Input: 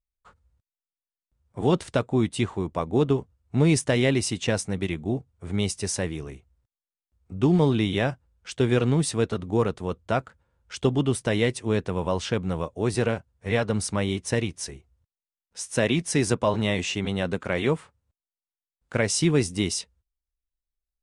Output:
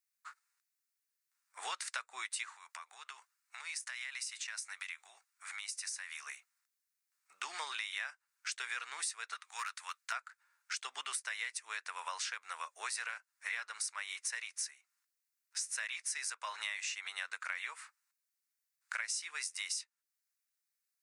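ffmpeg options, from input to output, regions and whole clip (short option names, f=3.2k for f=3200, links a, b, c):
-filter_complex "[0:a]asettb=1/sr,asplit=3[a][b][c];[a]atrim=end=2.524[d];[b]atrim=start=2.52:end=6.27,asetpts=PTS-STARTPTS,afade=t=in:d=0.004:c=qsin,afade=t=out:st=3.746:d=0.004:c=qsin,highpass=760,acompressor=threshold=-43dB:ratio=6:attack=3.2:release=140:knee=1:detection=peak[e];[c]atrim=start=6.266[f];[d][e]acrossfade=d=0.004:c1=hsin:c2=qsin[g];[g][f]acrossfade=d=0.004:c1=qsin:c2=hsin,asettb=1/sr,asplit=3[h][i][j];[h]atrim=end=9.354[k];[i]atrim=start=9.35:end=10.12,asetpts=PTS-STARTPTS,afade=t=in:d=0.004:c=qsin,afade=t=out:st=0.766:d=0.004:c=qsin,highpass=1.2k,asoftclip=type=hard:threshold=-28.5dB[l];[j]atrim=start=10.116[m];[k][l]acrossfade=d=0.004:c1=hsin:c2=qsin[n];[n][m]acrossfade=d=0.004:c1=qsin:c2=hsin,highpass=f=1.4k:w=0.5412,highpass=f=1.4k:w=1.3066,equalizer=f=3.2k:w=2.9:g=-11,acompressor=threshold=-47dB:ratio=6,volume=9.5dB"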